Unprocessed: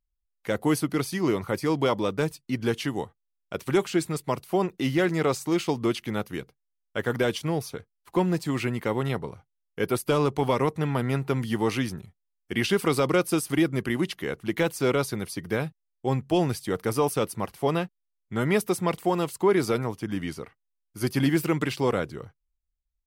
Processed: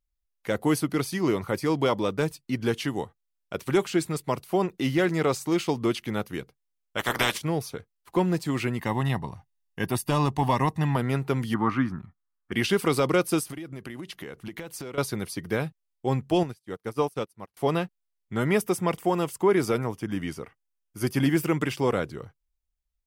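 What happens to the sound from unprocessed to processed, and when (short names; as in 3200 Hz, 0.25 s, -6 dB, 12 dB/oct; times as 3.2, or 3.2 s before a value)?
6.97–7.37 spectral limiter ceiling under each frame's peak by 25 dB
8.79–10.96 comb 1.1 ms
11.54–12.52 EQ curve 110 Hz 0 dB, 280 Hz +4 dB, 430 Hz -10 dB, 860 Hz +1 dB, 1200 Hz +11 dB, 2700 Hz -10 dB, 10000 Hz -23 dB
13.43–14.98 compressor 16:1, threshold -33 dBFS
16.43–17.57 upward expander 2.5:1, over -42 dBFS
18.49–21.92 bell 4100 Hz -10 dB 0.21 oct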